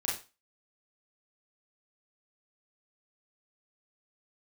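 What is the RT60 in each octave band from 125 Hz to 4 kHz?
0.30, 0.30, 0.30, 0.30, 0.30, 0.30 seconds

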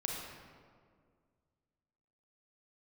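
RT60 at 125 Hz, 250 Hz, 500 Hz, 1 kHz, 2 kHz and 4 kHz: 2.4, 2.3, 2.2, 1.8, 1.4, 1.1 seconds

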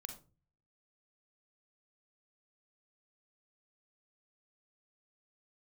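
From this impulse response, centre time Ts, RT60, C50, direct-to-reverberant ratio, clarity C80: 14 ms, 0.35 s, 8.5 dB, 5.5 dB, 14.5 dB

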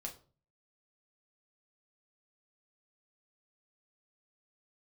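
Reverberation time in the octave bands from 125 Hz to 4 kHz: 0.65, 0.50, 0.45, 0.35, 0.30, 0.30 seconds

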